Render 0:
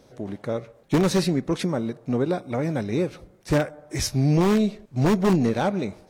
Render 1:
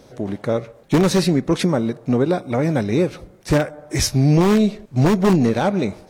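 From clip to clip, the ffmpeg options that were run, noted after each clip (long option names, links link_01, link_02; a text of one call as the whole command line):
ffmpeg -i in.wav -af "alimiter=limit=-15dB:level=0:latency=1:release=251,volume=7dB" out.wav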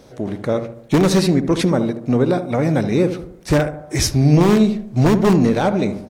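ffmpeg -i in.wav -filter_complex "[0:a]asplit=2[link_01][link_02];[link_02]adelay=73,lowpass=frequency=840:poles=1,volume=-8dB,asplit=2[link_03][link_04];[link_04]adelay=73,lowpass=frequency=840:poles=1,volume=0.5,asplit=2[link_05][link_06];[link_06]adelay=73,lowpass=frequency=840:poles=1,volume=0.5,asplit=2[link_07][link_08];[link_08]adelay=73,lowpass=frequency=840:poles=1,volume=0.5,asplit=2[link_09][link_10];[link_10]adelay=73,lowpass=frequency=840:poles=1,volume=0.5,asplit=2[link_11][link_12];[link_12]adelay=73,lowpass=frequency=840:poles=1,volume=0.5[link_13];[link_01][link_03][link_05][link_07][link_09][link_11][link_13]amix=inputs=7:normalize=0,volume=1dB" out.wav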